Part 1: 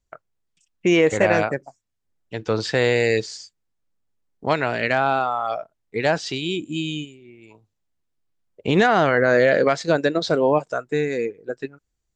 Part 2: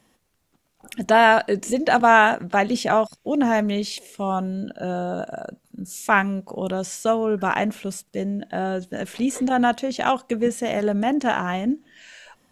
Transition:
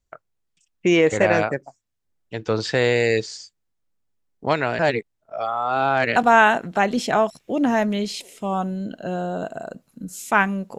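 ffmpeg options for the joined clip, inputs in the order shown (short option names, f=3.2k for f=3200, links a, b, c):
-filter_complex "[0:a]apad=whole_dur=10.78,atrim=end=10.78,asplit=2[a][b];[a]atrim=end=4.792[c];[b]atrim=start=4.788:end=6.162,asetpts=PTS-STARTPTS,areverse[d];[1:a]atrim=start=1.928:end=6.55[e];[c][d]acrossfade=d=0.004:c1=hsin:c2=hsin[f];[f][e]acrossfade=d=0.004:c1=hsin:c2=hsin"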